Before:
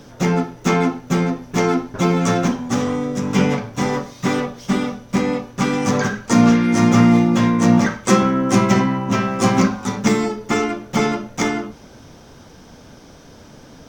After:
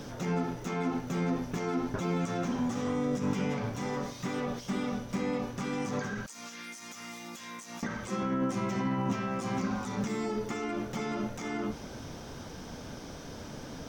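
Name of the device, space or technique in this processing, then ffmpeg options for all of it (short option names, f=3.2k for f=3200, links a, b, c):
de-esser from a sidechain: -filter_complex "[0:a]asettb=1/sr,asplit=3[a][b][c];[a]atrim=end=6.264[d];[b]atrim=start=6.26:end=7.83,asetpts=PTS-STARTPTS,afade=t=in:d=0.004:c=qsin,afade=t=out:st=1.566:d=0.004:c=qsin,aderivative[e];[c]atrim=start=7.826[f];[d][e]acrossfade=d=0.004:c1=hsin:c2=qsin[g];[g][f]acrossfade=d=0.004:c1=qsin:c2=hsin,asplit=2[h][i];[i]highpass=f=6.8k:p=1,apad=whole_len=612384[j];[h][j]sidechaincompress=threshold=-49dB:ratio=6:attack=3.5:release=52"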